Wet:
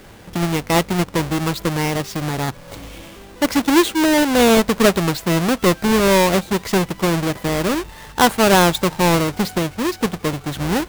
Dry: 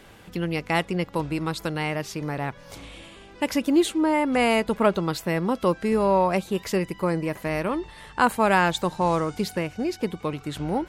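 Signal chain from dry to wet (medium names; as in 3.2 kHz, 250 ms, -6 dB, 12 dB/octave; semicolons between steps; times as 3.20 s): square wave that keeps the level; trim +2 dB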